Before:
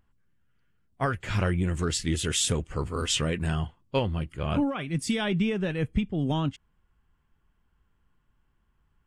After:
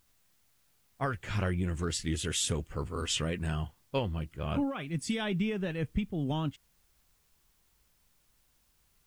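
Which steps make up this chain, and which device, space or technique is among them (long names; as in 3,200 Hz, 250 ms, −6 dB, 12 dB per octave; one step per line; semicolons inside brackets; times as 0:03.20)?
plain cassette with noise reduction switched in (one half of a high-frequency compander decoder only; tape wow and flutter 29 cents; white noise bed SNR 37 dB)
level −5 dB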